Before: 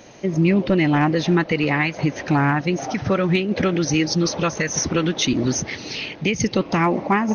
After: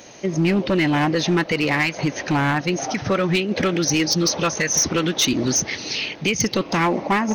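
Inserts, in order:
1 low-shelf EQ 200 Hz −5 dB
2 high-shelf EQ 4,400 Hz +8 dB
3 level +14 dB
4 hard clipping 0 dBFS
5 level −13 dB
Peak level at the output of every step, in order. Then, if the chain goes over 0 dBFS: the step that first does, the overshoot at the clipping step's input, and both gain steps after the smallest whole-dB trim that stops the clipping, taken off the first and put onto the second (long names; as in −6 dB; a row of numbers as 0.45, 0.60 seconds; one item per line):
−7.5, −5.5, +8.5, 0.0, −13.0 dBFS
step 3, 8.5 dB
step 3 +5 dB, step 5 −4 dB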